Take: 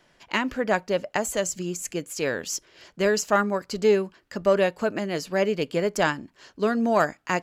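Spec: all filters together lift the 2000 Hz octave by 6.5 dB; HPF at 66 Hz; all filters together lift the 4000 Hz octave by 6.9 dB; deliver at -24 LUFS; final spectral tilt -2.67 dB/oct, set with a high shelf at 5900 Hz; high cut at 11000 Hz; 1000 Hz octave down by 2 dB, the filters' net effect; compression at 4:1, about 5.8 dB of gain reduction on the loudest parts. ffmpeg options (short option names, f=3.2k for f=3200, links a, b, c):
-af "highpass=66,lowpass=11k,equalizer=f=1k:t=o:g=-6,equalizer=f=2k:t=o:g=8.5,equalizer=f=4k:t=o:g=4.5,highshelf=f=5.9k:g=6,acompressor=threshold=-22dB:ratio=4,volume=3dB"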